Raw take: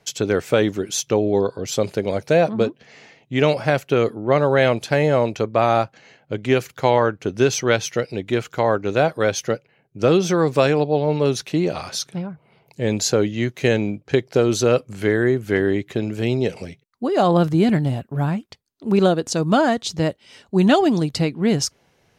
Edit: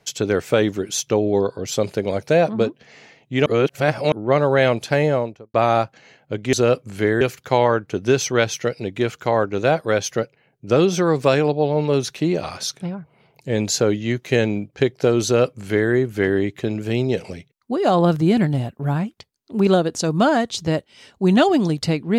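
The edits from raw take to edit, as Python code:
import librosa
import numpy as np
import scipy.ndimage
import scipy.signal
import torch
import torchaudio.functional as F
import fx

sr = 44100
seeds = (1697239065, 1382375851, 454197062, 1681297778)

y = fx.studio_fade_out(x, sr, start_s=4.99, length_s=0.55)
y = fx.edit(y, sr, fx.reverse_span(start_s=3.46, length_s=0.66),
    fx.duplicate(start_s=14.56, length_s=0.68, to_s=6.53), tone=tone)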